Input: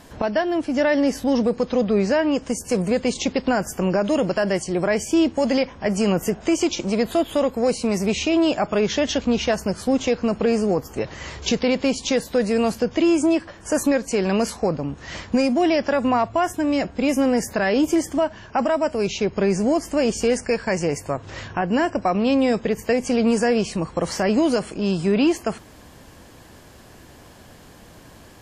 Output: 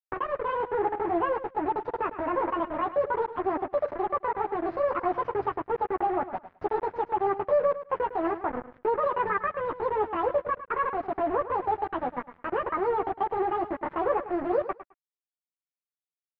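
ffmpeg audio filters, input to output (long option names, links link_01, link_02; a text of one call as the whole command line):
ffmpeg -i in.wav -filter_complex "[0:a]flanger=delay=17.5:depth=3.5:speed=0.31,asetrate=76440,aresample=44100,asplit=2[link_01][link_02];[link_02]aeval=exprs='sgn(val(0))*max(abs(val(0))-0.0126,0)':channel_layout=same,volume=-5dB[link_03];[link_01][link_03]amix=inputs=2:normalize=0,acrusher=bits=3:mix=0:aa=0.5,lowpass=frequency=1800:width=0.5412,lowpass=frequency=1800:width=1.3066,asplit=2[link_04][link_05];[link_05]aecho=0:1:106|212:0.224|0.0381[link_06];[link_04][link_06]amix=inputs=2:normalize=0,volume=-8dB" out.wav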